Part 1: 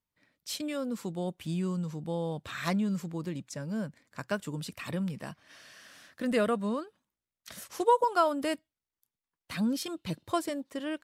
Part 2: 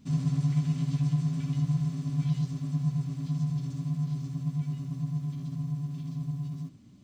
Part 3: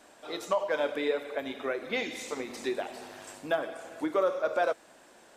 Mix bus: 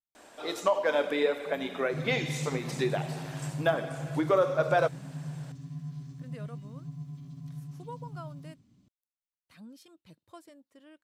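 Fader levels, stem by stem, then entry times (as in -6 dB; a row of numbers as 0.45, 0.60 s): -20.0, -9.0, +2.5 dB; 0.00, 1.85, 0.15 s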